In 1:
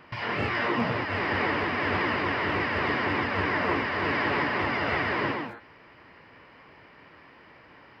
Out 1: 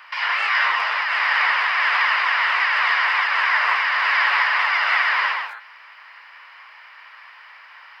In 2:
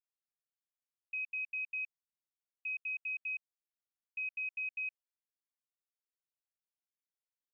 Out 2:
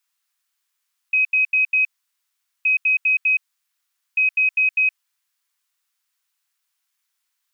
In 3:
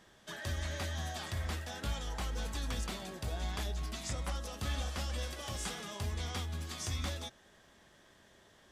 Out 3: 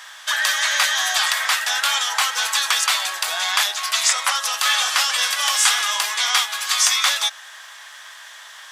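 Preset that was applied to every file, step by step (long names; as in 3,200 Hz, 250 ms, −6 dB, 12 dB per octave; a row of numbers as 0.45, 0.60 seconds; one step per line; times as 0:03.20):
high-pass filter 1,000 Hz 24 dB per octave
loudness normalisation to −18 LKFS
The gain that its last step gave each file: +11.0, +20.0, +25.0 decibels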